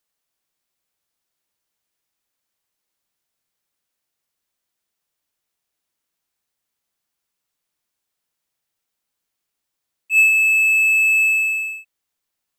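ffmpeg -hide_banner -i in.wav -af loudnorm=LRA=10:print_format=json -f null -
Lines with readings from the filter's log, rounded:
"input_i" : "-13.2",
"input_tp" : "-6.0",
"input_lra" : "1.9",
"input_thresh" : "-24.1",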